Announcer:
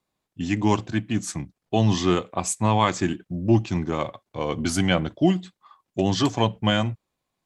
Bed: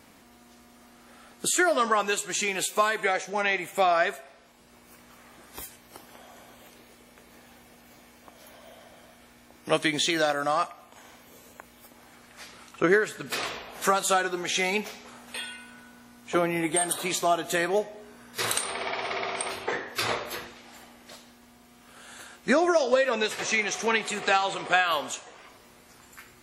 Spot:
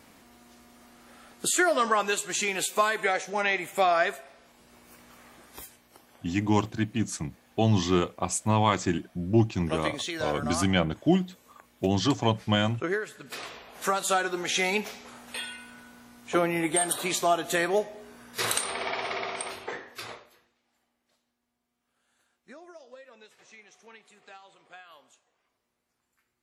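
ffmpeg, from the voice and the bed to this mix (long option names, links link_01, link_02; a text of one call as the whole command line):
ffmpeg -i stem1.wav -i stem2.wav -filter_complex "[0:a]adelay=5850,volume=-3dB[link_01];[1:a]volume=7.5dB,afade=type=out:start_time=5.26:duration=0.63:silence=0.421697,afade=type=in:start_time=13.5:duration=0.9:silence=0.398107,afade=type=out:start_time=18.96:duration=1.38:silence=0.0473151[link_02];[link_01][link_02]amix=inputs=2:normalize=0" out.wav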